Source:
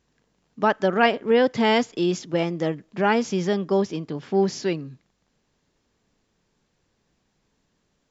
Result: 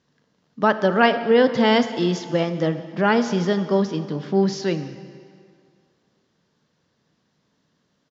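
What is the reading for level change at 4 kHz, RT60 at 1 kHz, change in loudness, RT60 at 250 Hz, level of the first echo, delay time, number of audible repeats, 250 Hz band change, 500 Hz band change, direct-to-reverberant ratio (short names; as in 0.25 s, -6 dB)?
+2.5 dB, 2.3 s, +2.5 dB, 2.1 s, -22.5 dB, 0.179 s, 1, +3.0 dB, +2.0 dB, 10.5 dB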